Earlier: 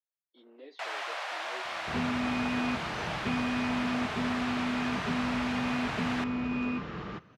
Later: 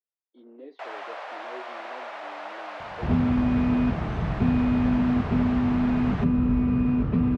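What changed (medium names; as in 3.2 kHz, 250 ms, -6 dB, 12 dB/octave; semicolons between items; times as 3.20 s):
second sound: entry +1.15 s; master: add tilt EQ -4.5 dB/octave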